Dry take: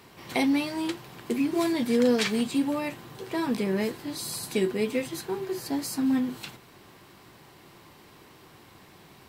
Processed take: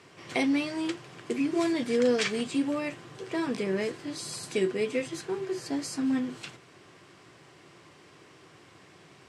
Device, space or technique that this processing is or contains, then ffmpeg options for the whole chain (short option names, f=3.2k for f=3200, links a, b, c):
car door speaker: -af "highpass=110,equalizer=f=220:t=q:w=4:g=-8,equalizer=f=880:t=q:w=4:g=-7,equalizer=f=4k:t=q:w=4:g=-5,lowpass=f=8.5k:w=0.5412,lowpass=f=8.5k:w=1.3066"